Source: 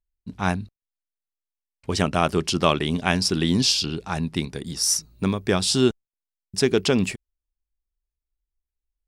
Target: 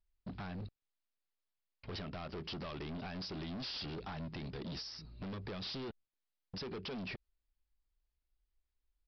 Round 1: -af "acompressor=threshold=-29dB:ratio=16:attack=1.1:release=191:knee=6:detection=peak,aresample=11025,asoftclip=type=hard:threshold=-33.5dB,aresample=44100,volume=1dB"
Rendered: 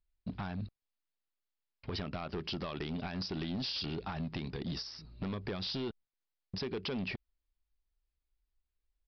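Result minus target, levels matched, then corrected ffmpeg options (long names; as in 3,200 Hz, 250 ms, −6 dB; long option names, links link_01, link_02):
hard clipping: distortion −6 dB
-af "acompressor=threshold=-29dB:ratio=16:attack=1.1:release=191:knee=6:detection=peak,aresample=11025,asoftclip=type=hard:threshold=-41.5dB,aresample=44100,volume=1dB"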